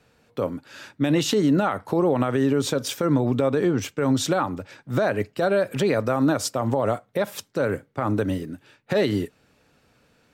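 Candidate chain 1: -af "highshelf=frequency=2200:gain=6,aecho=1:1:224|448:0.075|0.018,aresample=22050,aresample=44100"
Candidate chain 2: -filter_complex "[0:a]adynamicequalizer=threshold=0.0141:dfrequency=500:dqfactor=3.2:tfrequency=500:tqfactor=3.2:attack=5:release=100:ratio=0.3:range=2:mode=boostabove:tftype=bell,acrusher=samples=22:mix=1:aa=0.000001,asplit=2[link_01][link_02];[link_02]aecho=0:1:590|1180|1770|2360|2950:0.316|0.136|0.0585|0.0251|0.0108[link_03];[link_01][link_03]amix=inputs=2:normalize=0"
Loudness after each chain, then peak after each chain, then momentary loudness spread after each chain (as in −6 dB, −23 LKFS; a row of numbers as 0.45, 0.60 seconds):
−23.0, −22.0 LKFS; −8.0, −7.0 dBFS; 9, 12 LU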